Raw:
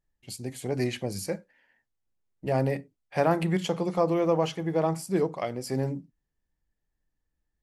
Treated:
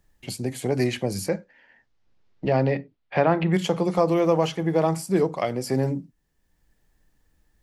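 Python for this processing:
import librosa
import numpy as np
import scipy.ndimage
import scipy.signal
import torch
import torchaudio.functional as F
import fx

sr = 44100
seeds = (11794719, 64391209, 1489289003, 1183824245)

y = fx.lowpass(x, sr, hz=fx.line((1.28, 7000.0), (3.52, 3400.0)), slope=24, at=(1.28, 3.52), fade=0.02)
y = fx.band_squash(y, sr, depth_pct=40)
y = y * librosa.db_to_amplitude(4.5)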